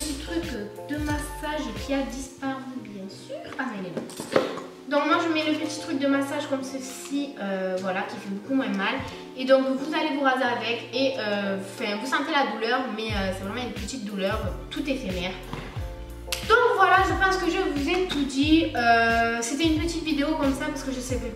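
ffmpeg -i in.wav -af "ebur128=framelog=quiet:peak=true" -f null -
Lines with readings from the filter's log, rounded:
Integrated loudness:
  I:         -25.6 LUFS
  Threshold: -35.8 LUFS
Loudness range:
  LRA:         8.8 LU
  Threshold: -45.7 LUFS
  LRA low:   -30.9 LUFS
  LRA high:  -22.1 LUFS
True peak:
  Peak:       -1.9 dBFS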